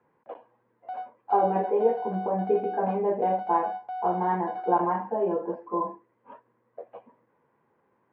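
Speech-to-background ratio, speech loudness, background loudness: 9.0 dB, -27.5 LUFS, -36.5 LUFS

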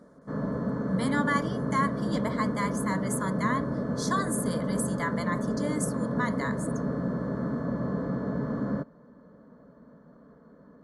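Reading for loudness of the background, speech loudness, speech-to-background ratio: -31.0 LUFS, -32.0 LUFS, -1.0 dB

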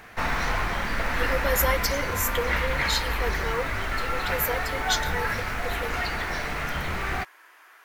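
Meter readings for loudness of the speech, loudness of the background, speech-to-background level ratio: -30.0 LUFS, -28.0 LUFS, -2.0 dB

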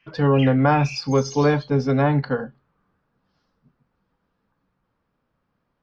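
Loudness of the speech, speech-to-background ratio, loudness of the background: -20.0 LUFS, 16.5 dB, -36.5 LUFS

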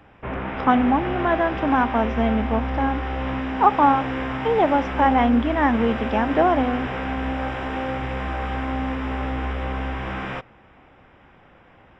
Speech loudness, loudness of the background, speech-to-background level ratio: -21.5 LUFS, -27.5 LUFS, 6.0 dB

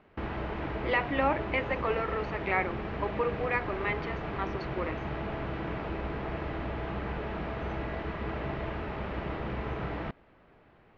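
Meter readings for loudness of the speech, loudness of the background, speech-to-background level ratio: -32.5 LUFS, -36.0 LUFS, 3.5 dB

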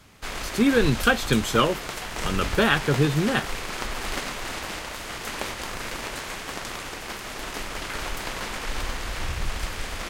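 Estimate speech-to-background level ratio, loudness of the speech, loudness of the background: 8.5 dB, -23.0 LUFS, -31.5 LUFS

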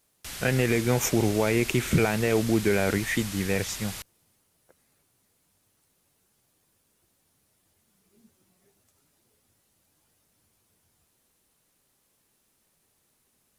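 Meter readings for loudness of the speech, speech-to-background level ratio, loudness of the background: -25.5 LUFS, 10.5 dB, -36.0 LUFS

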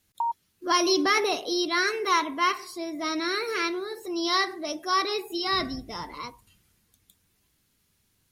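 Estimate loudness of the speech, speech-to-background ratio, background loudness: -26.0 LUFS, 6.5 dB, -32.5 LUFS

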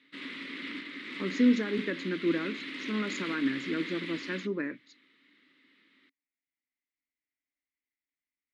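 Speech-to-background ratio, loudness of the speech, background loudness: 7.0 dB, -31.5 LUFS, -38.5 LUFS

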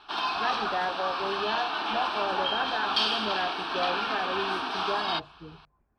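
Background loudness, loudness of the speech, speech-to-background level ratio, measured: -29.0 LUFS, -34.0 LUFS, -5.0 dB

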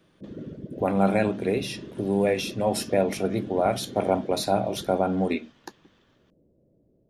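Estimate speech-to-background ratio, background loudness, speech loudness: 14.0 dB, -40.0 LUFS, -26.0 LUFS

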